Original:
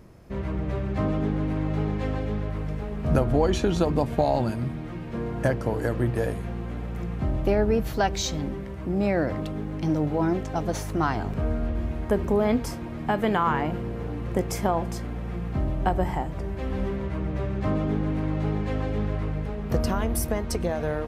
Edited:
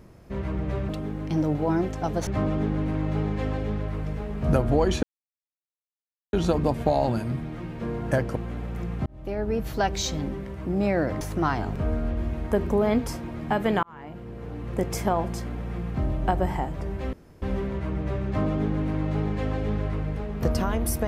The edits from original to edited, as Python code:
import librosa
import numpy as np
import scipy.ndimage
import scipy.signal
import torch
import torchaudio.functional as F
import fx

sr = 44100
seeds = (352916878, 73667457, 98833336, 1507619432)

y = fx.edit(x, sr, fx.insert_silence(at_s=3.65, length_s=1.3),
    fx.cut(start_s=5.68, length_s=0.88),
    fx.fade_in_span(start_s=7.26, length_s=1.08, curve='qsin'),
    fx.move(start_s=9.41, length_s=1.38, to_s=0.89),
    fx.fade_in_span(start_s=13.41, length_s=1.1),
    fx.insert_room_tone(at_s=16.71, length_s=0.29), tone=tone)